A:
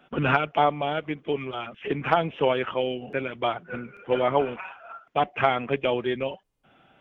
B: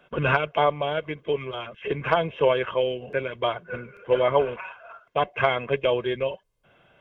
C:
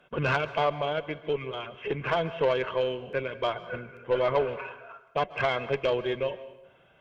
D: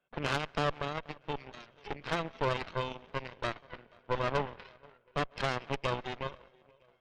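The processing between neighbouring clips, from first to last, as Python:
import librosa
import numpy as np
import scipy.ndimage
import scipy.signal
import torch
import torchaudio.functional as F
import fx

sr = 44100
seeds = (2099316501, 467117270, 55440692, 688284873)

y1 = x + 0.55 * np.pad(x, (int(1.9 * sr / 1000.0), 0))[:len(x)]
y2 = fx.tube_stage(y1, sr, drive_db=15.0, bias=0.25)
y2 = fx.rev_plate(y2, sr, seeds[0], rt60_s=0.92, hf_ratio=0.8, predelay_ms=120, drr_db=15.0)
y2 = y2 * librosa.db_to_amplitude(-2.0)
y3 = fx.echo_feedback(y2, sr, ms=481, feedback_pct=58, wet_db=-17.0)
y3 = fx.cheby_harmonics(y3, sr, harmonics=(3, 4), levels_db=(-11, -12), full_scale_db=-14.5)
y3 = y3 * librosa.db_to_amplitude(-4.5)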